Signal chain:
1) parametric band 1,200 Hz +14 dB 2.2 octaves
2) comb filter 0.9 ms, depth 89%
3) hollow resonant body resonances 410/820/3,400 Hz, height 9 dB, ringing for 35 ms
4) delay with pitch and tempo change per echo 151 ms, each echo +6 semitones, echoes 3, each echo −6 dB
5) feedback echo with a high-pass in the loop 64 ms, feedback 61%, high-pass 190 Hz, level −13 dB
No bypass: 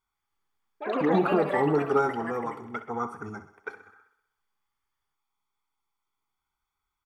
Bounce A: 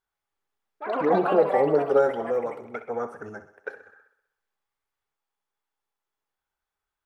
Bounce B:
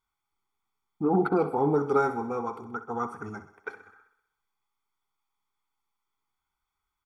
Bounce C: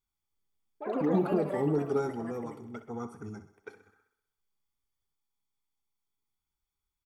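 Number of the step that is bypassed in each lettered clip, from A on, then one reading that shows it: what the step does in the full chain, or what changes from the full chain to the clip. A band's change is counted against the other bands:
2, 500 Hz band +6.5 dB
4, 2 kHz band −4.0 dB
1, 2 kHz band −9.0 dB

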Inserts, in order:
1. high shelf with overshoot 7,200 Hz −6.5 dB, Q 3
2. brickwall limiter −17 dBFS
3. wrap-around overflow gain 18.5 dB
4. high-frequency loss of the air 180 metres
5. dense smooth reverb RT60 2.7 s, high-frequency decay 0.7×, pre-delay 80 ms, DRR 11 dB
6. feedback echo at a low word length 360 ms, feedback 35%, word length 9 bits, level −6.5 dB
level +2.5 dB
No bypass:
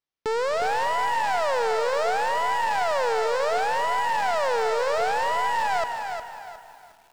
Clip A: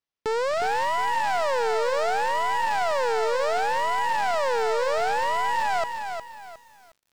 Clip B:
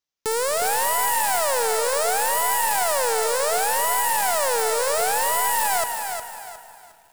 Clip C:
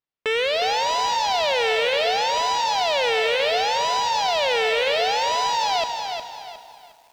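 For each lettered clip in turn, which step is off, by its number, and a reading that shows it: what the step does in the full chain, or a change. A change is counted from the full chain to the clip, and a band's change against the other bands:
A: 5, change in crest factor −1.5 dB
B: 4, 8 kHz band +17.5 dB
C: 1, 4 kHz band +11.0 dB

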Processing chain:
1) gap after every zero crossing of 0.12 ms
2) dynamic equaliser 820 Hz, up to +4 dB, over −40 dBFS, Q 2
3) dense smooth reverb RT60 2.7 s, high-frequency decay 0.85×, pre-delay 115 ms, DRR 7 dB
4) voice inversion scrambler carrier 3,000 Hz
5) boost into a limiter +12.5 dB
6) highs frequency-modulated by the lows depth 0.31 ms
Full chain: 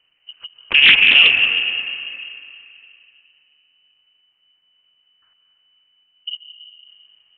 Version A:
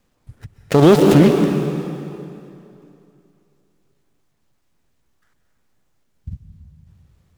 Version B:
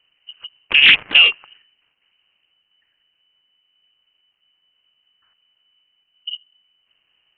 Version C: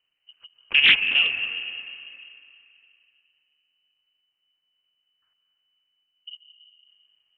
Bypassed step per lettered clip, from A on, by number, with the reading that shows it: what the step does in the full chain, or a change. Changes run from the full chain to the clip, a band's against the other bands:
4, 4 kHz band −37.5 dB
3, change in momentary loudness spread −18 LU
5, change in crest factor +4.0 dB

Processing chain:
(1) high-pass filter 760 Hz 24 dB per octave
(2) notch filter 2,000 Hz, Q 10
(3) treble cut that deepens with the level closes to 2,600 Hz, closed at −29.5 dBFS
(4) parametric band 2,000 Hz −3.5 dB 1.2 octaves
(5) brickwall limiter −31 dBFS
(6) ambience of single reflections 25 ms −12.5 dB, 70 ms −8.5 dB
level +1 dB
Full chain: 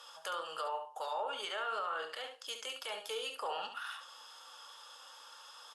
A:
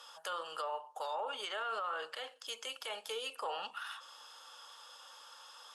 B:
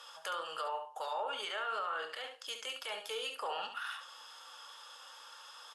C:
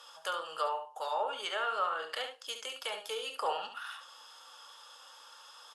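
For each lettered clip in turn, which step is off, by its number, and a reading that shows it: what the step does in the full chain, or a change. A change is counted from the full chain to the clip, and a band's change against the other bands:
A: 6, echo-to-direct ratio −7.0 dB to none audible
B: 4, 2 kHz band +2.0 dB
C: 5, change in crest factor +3.5 dB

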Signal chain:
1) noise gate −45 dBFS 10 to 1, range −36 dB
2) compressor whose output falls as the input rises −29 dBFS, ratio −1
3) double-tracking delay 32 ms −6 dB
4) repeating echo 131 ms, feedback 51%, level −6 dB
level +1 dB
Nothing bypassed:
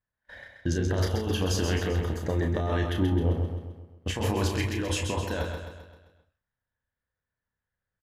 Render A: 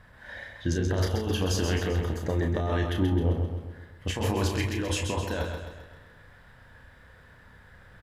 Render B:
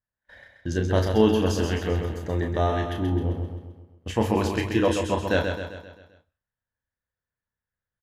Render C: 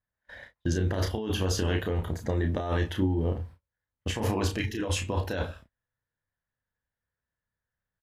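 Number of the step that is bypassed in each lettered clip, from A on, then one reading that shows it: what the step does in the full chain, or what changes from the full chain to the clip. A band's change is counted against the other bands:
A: 1, change in momentary loudness spread +2 LU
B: 2, change in crest factor +6.0 dB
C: 4, echo-to-direct ratio −4.5 dB to none audible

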